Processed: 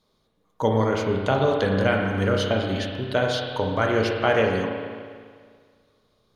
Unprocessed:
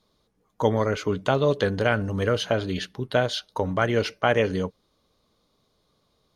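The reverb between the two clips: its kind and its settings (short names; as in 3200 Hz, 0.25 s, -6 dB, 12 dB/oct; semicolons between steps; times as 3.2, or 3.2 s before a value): spring tank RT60 1.9 s, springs 31/36 ms, chirp 25 ms, DRR 0.5 dB; gain -1 dB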